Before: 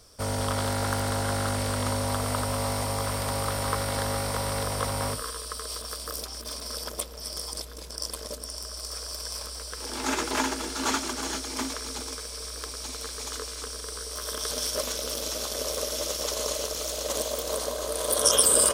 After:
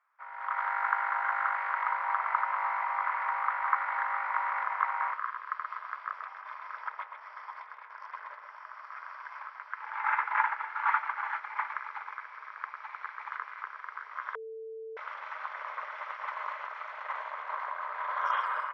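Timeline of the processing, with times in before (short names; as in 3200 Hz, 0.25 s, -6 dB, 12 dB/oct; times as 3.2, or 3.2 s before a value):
5.33–9.39 echo 0.129 s -6 dB
14.35–14.97 bleep 445 Hz -9.5 dBFS
whole clip: elliptic band-pass 890–2100 Hz, stop band 80 dB; AGC gain up to 14 dB; gain -8 dB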